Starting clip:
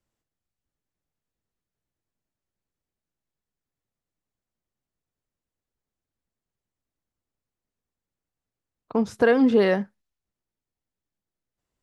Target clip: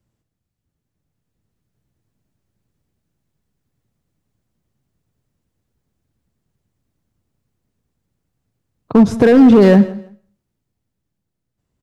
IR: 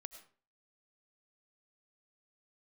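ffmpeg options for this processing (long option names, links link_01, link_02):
-filter_complex "[0:a]equalizer=frequency=120:width_type=o:width=2.8:gain=13,alimiter=limit=-9dB:level=0:latency=1:release=14,dynaudnorm=framelen=210:gausssize=13:maxgain=6dB,volume=7.5dB,asoftclip=hard,volume=-7.5dB,aecho=1:1:163|326:0.1|0.023,asplit=2[link_01][link_02];[1:a]atrim=start_sample=2205[link_03];[link_02][link_03]afir=irnorm=-1:irlink=0,volume=0.5dB[link_04];[link_01][link_04]amix=inputs=2:normalize=0"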